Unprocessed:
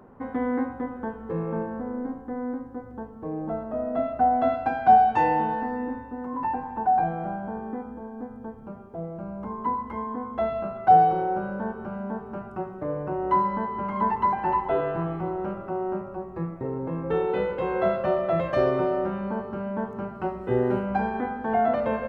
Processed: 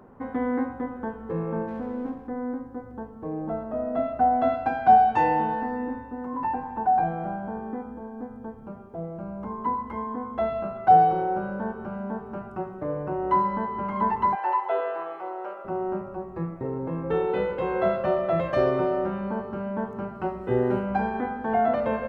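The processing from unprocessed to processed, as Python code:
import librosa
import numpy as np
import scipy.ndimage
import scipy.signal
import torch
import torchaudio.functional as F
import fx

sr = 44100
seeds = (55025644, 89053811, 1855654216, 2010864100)

y = fx.running_max(x, sr, window=5, at=(1.67, 2.27), fade=0.02)
y = fx.highpass(y, sr, hz=460.0, slope=24, at=(14.35, 15.65))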